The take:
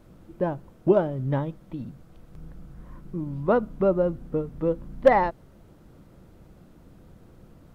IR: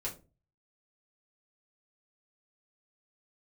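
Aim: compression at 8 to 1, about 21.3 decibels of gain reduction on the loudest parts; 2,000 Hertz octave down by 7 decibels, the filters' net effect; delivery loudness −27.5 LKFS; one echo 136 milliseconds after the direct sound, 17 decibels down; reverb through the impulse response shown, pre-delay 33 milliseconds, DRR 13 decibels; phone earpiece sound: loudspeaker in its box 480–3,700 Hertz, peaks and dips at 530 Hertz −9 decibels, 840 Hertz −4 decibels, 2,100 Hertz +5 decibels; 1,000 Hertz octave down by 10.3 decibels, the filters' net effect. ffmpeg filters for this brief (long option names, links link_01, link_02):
-filter_complex "[0:a]equalizer=frequency=1000:width_type=o:gain=-7.5,equalizer=frequency=2000:width_type=o:gain=-8.5,acompressor=threshold=-37dB:ratio=8,aecho=1:1:136:0.141,asplit=2[link_01][link_02];[1:a]atrim=start_sample=2205,adelay=33[link_03];[link_02][link_03]afir=irnorm=-1:irlink=0,volume=-14dB[link_04];[link_01][link_04]amix=inputs=2:normalize=0,highpass=480,equalizer=frequency=530:width_type=q:width=4:gain=-9,equalizer=frequency=840:width_type=q:width=4:gain=-4,equalizer=frequency=2100:width_type=q:width=4:gain=5,lowpass=frequency=3700:width=0.5412,lowpass=frequency=3700:width=1.3066,volume=25dB"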